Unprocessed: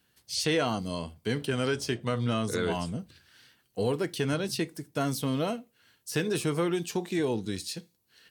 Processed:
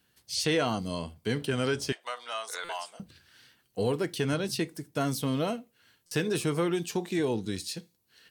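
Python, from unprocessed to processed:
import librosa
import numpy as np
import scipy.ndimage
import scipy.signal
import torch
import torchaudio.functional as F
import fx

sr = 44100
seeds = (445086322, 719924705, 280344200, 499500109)

y = fx.cheby1_highpass(x, sr, hz=730.0, order=3, at=(1.92, 3.0))
y = fx.buffer_glitch(y, sr, at_s=(2.64, 6.06), block=256, repeats=8)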